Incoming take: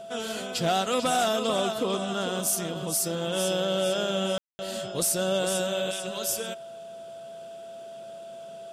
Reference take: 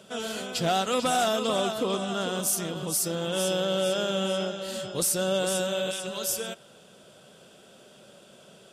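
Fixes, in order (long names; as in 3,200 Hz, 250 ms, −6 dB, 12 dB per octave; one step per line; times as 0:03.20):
click removal
notch filter 670 Hz, Q 30
ambience match 0:04.38–0:04.59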